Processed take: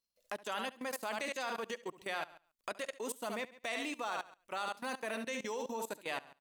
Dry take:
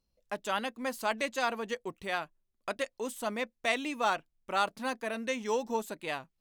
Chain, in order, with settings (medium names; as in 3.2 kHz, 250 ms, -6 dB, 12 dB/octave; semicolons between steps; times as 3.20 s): treble shelf 5.8 kHz +4.5 dB; feedback delay 70 ms, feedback 31%, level -8.5 dB; level held to a coarse grid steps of 19 dB; bass shelf 150 Hz -12 dB; tape noise reduction on one side only encoder only; trim +1 dB